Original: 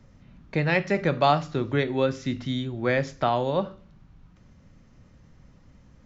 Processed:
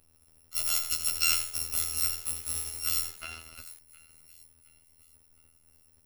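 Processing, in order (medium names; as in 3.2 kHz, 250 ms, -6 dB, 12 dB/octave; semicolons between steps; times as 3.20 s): bit-reversed sample order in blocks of 256 samples; 3.07–3.67 s: low-pass 2.2 kHz 12 dB/octave; in parallel at -3 dB: crossover distortion -39 dBFS; on the sum: robot voice 81.1 Hz; on a send: feedback echo behind a high-pass 715 ms, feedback 41%, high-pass 1.4 kHz, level -19 dB; on the sum: bit-crushed delay 84 ms, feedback 35%, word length 4-bit, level -8 dB; trim -8.5 dB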